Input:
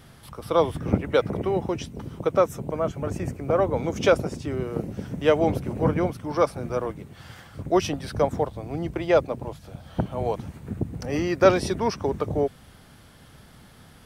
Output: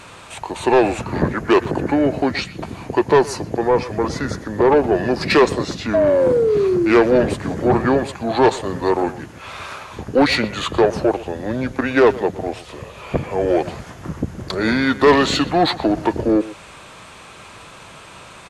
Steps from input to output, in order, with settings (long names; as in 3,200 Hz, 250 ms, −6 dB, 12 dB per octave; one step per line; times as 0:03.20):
sound drawn into the spectrogram fall, 0:04.51–0:05.26, 420–860 Hz −26 dBFS
in parallel at −10.5 dB: soft clipping −17.5 dBFS, distortion −11 dB
on the sum: speed change −24%
mid-hump overdrive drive 20 dB, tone 4,500 Hz, clips at −3.5 dBFS
far-end echo of a speakerphone 120 ms, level −15 dB